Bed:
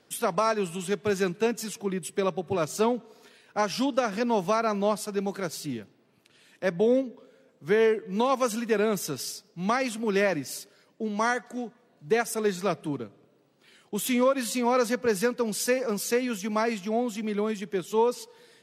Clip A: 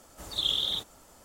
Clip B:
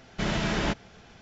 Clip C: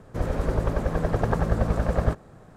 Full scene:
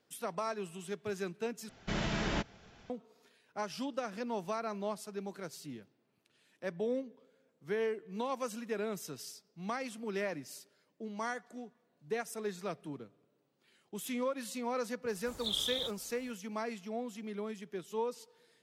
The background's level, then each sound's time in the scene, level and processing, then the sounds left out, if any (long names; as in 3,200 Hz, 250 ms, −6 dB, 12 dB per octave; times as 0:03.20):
bed −12 dB
0:01.69: overwrite with B −6.5 dB
0:15.08: mix in A −7 dB + notch filter 2,800 Hz, Q 19
not used: C